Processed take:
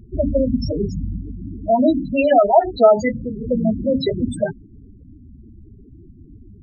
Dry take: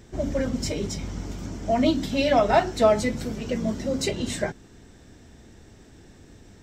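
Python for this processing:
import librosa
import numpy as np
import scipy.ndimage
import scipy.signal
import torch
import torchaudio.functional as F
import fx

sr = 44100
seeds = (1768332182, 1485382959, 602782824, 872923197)

y = fx.low_shelf(x, sr, hz=340.0, db=-5.0, at=(1.17, 3.44))
y = fx.spec_topn(y, sr, count=8)
y = y * librosa.db_to_amplitude(8.5)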